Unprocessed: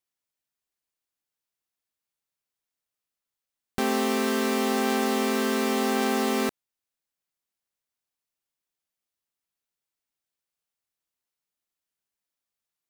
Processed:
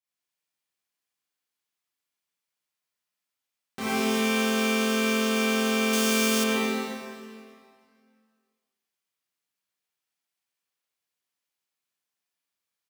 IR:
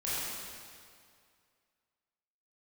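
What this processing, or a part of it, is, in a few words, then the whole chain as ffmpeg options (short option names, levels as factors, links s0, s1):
PA in a hall: -filter_complex "[0:a]highpass=110,equalizer=f=2800:t=o:w=2.9:g=4,aecho=1:1:136:0.447[s0];[1:a]atrim=start_sample=2205[s1];[s0][s1]afir=irnorm=-1:irlink=0,asettb=1/sr,asplit=3[s2][s3][s4];[s2]atrim=end=5.934[s5];[s3]atrim=start=5.93:end=6.44,asetpts=PTS-STARTPTS,afade=t=in:d=0.004:c=qsin,afade=t=out:st=0.506:d=0.004:c=qsin,bass=f=250:g=1,treble=f=4000:g=8[s6];[s4]atrim=start=6.436[s7];[s5][s6]acrossfade=d=0.004:c1=hsin:c2=qsin[s8];[s8][s7]acrossfade=d=0.004:c1=qsin:c2=hsin,volume=0.447"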